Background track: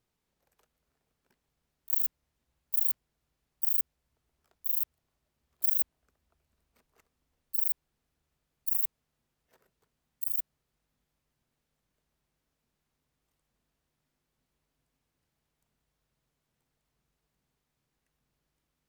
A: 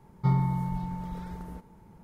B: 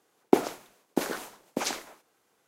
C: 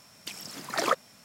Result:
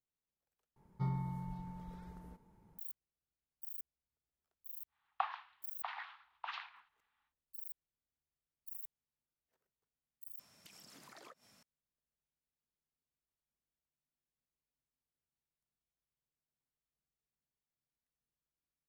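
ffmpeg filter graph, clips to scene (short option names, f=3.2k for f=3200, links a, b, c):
-filter_complex "[0:a]volume=-19dB[a];[2:a]highpass=f=470:t=q:w=0.5412,highpass=f=470:t=q:w=1.307,lowpass=f=3.4k:t=q:w=0.5176,lowpass=f=3.4k:t=q:w=0.7071,lowpass=f=3.4k:t=q:w=1.932,afreqshift=380[b];[3:a]acompressor=threshold=-43dB:ratio=6:attack=3.2:release=140:knee=1:detection=peak[c];[a]asplit=3[d][e][f];[d]atrim=end=0.764[g];[1:a]atrim=end=2.03,asetpts=PTS-STARTPTS,volume=-12.5dB[h];[e]atrim=start=2.786:end=10.394[i];[c]atrim=end=1.24,asetpts=PTS-STARTPTS,volume=-11.5dB[j];[f]atrim=start=11.626[k];[b]atrim=end=2.47,asetpts=PTS-STARTPTS,volume=-10dB,afade=t=in:d=0.1,afade=t=out:st=2.37:d=0.1,adelay=4870[l];[g][h]acrossfade=d=0.004:c1=hsin:c2=hsin[m];[m][i]acrossfade=d=0.004:c1=hsin:c2=hsin[n];[n][j]acrossfade=d=0.004:c1=hsin:c2=hsin[o];[o][k]acrossfade=d=0.004:c1=hsin:c2=hsin[p];[p][l]amix=inputs=2:normalize=0"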